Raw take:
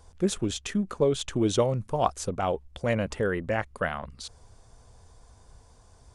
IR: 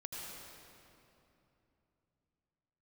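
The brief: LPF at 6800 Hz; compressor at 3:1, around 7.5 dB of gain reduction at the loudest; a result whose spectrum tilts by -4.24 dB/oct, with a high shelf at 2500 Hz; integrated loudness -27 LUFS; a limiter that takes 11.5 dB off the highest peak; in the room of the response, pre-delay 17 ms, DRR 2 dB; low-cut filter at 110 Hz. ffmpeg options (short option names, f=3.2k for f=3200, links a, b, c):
-filter_complex "[0:a]highpass=110,lowpass=6.8k,highshelf=f=2.5k:g=8,acompressor=threshold=-28dB:ratio=3,alimiter=level_in=2dB:limit=-24dB:level=0:latency=1,volume=-2dB,asplit=2[a][b];[1:a]atrim=start_sample=2205,adelay=17[c];[b][c]afir=irnorm=-1:irlink=0,volume=-1dB[d];[a][d]amix=inputs=2:normalize=0,volume=7.5dB"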